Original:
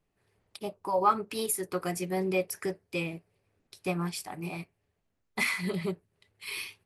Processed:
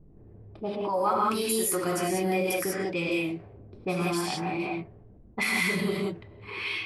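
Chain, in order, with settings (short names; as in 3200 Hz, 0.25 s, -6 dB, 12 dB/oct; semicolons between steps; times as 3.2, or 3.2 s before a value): non-linear reverb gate 0.21 s rising, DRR -3.5 dB; low-pass opened by the level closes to 310 Hz, open at -25 dBFS; fast leveller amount 50%; gain -4 dB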